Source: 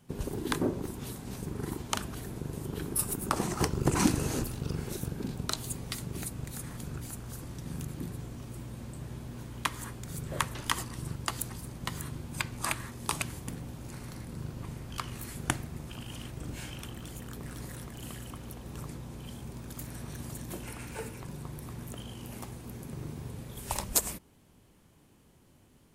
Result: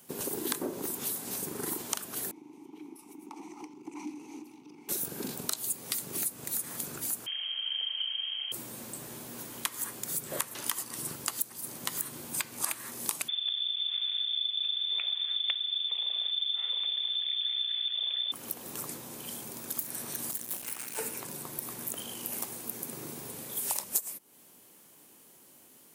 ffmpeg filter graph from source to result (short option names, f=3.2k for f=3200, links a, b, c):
-filter_complex "[0:a]asettb=1/sr,asplit=3[a][b][c];[a]atrim=end=2.314[d];[b]atrim=start=2.31:end=4.89,asetpts=PTS-STARTPTS,afade=t=in:d=0.004:c=qsin,afade=t=out:st=2.576:d=0.004:c=qsin,equalizer=f=6k:t=o:w=0.26:g=9,acompressor=threshold=-31dB:ratio=2.5:attack=3.2:release=140:knee=1:detection=peak,asplit=3[e][f][g];[e]bandpass=f=300:t=q:w=8,volume=0dB[h];[f]bandpass=f=870:t=q:w=8,volume=-6dB[i];[g]bandpass=f=2.24k:t=q:w=8,volume=-9dB[j];[h][i][j]amix=inputs=3:normalize=0[k];[c]atrim=start=4.886[l];[d][k]acrossfade=d=0.004:c1=hsin:c2=qsin[m];[m][l]acrossfade=d=0.004:c1=qsin:c2=hsin,asettb=1/sr,asplit=3[n][o][p];[n]atrim=end=7.264[q];[o]atrim=start=7.26:end=8.52,asetpts=PTS-STARTPTS,afade=t=in:d=0.004:c=qsin,afade=t=out:st=1.256:d=0.004:c=qsin,aemphasis=mode=reproduction:type=50fm,lowpass=f=2.8k:t=q:w=0.5098,lowpass=f=2.8k:t=q:w=0.6013,lowpass=f=2.8k:t=q:w=0.9,lowpass=f=2.8k:t=q:w=2.563,afreqshift=-3300[r];[p]atrim=start=8.516[s];[q][r]acrossfade=d=0.004:c1=hsin:c2=qsin[t];[t][s]acrossfade=d=0.004:c1=qsin:c2=hsin,asettb=1/sr,asplit=3[u][v][w];[u]atrim=end=13.284[x];[v]atrim=start=13.28:end=18.32,asetpts=PTS-STARTPTS,afade=t=in:d=0.004:c=qsin,afade=t=out:st=5.036:d=0.004:c=qsin,aemphasis=mode=reproduction:type=bsi,lowpass=f=3.1k:t=q:w=0.5098,lowpass=f=3.1k:t=q:w=0.6013,lowpass=f=3.1k:t=q:w=0.9,lowpass=f=3.1k:t=q:w=2.563,afreqshift=-3600[y];[w]atrim=start=18.316[z];[x][y]acrossfade=d=0.004:c1=hsin:c2=qsin[aa];[aa][z]acrossfade=d=0.004:c1=qsin:c2=hsin,asettb=1/sr,asplit=3[ab][ac][ad];[ab]atrim=end=20.314[ae];[ac]atrim=start=20.31:end=20.98,asetpts=PTS-STARTPTS,afade=t=in:d=0.004:c=qsin,afade=t=out:st=0.666:d=0.004:c=qsin,equalizer=f=430:t=o:w=1.4:g=-6,aeval=exprs='max(val(0),0)':c=same[af];[ad]atrim=start=20.976[ag];[ae][af]acrossfade=d=0.004:c1=hsin:c2=qsin[ah];[ah][ag]acrossfade=d=0.004:c1=qsin:c2=hsin,highpass=290,aemphasis=mode=production:type=50fm,acompressor=threshold=-33dB:ratio=5,volume=3.5dB"